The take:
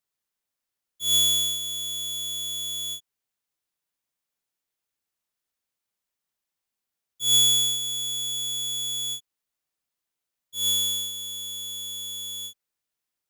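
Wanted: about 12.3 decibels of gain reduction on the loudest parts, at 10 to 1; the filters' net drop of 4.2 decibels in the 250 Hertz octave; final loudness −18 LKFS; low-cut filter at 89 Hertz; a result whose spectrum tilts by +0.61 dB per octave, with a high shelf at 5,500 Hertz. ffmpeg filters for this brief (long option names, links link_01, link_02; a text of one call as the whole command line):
ffmpeg -i in.wav -af "highpass=89,equalizer=frequency=250:width_type=o:gain=-5.5,highshelf=frequency=5500:gain=-6.5,acompressor=threshold=-32dB:ratio=10,volume=15dB" out.wav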